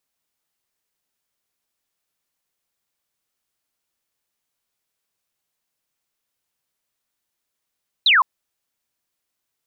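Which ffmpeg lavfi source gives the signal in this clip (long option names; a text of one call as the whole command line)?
ffmpeg -f lavfi -i "aevalsrc='0.282*clip(t/0.002,0,1)*clip((0.16-t)/0.002,0,1)*sin(2*PI*4200*0.16/log(950/4200)*(exp(log(950/4200)*t/0.16)-1))':duration=0.16:sample_rate=44100" out.wav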